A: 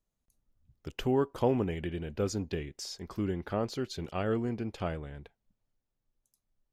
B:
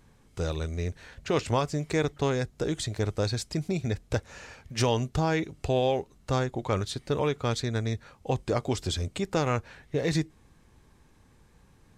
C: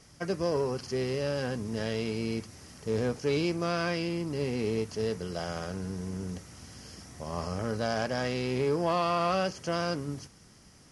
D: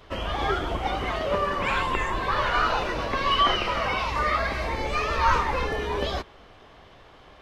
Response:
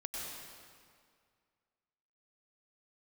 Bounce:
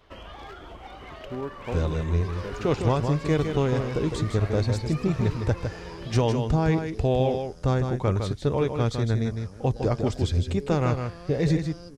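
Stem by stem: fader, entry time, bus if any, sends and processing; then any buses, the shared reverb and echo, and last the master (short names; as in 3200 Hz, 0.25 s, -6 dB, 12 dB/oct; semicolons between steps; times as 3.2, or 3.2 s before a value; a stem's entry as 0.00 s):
-6.0 dB, 0.25 s, no send, no echo send, Wiener smoothing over 41 samples
-0.5 dB, 1.35 s, no send, echo send -6.5 dB, tilt -2 dB/oct
-11.5 dB, 1.95 s, no send, no echo send, band shelf 1400 Hz -10.5 dB 2.5 oct
-8.0 dB, 0.00 s, no send, no echo send, one-sided fold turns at -20 dBFS; compressor 6:1, threshold -31 dBFS, peak gain reduction 14 dB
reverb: off
echo: echo 0.157 s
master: dry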